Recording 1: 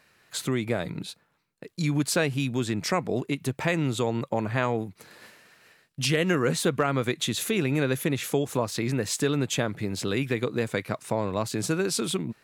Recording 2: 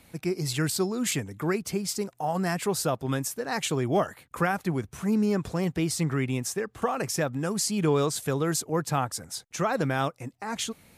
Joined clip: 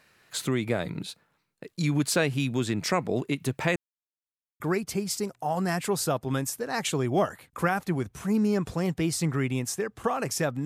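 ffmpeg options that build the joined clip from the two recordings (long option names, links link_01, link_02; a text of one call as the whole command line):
ffmpeg -i cue0.wav -i cue1.wav -filter_complex "[0:a]apad=whole_dur=10.65,atrim=end=10.65,asplit=2[link_01][link_02];[link_01]atrim=end=3.76,asetpts=PTS-STARTPTS,afade=type=out:start_time=3.756:duration=0.004:curve=hsin[link_03];[link_02]atrim=start=3.76:end=4.6,asetpts=PTS-STARTPTS,volume=0[link_04];[1:a]atrim=start=1.38:end=7.43,asetpts=PTS-STARTPTS,afade=type=in:duration=0.004:curve=hsin[link_05];[link_03][link_04][link_05]concat=n=3:v=0:a=1" out.wav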